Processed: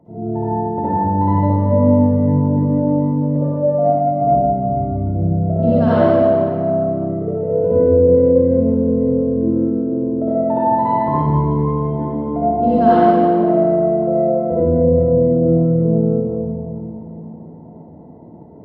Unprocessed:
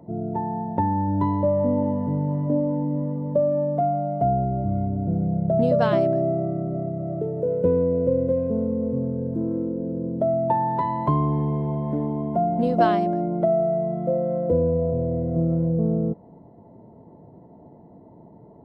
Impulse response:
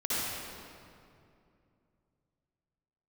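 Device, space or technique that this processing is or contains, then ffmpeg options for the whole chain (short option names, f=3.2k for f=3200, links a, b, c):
swimming-pool hall: -filter_complex "[1:a]atrim=start_sample=2205[a];[0:a][a]afir=irnorm=-1:irlink=0,highshelf=f=3.3k:g=-8,volume=-2.5dB"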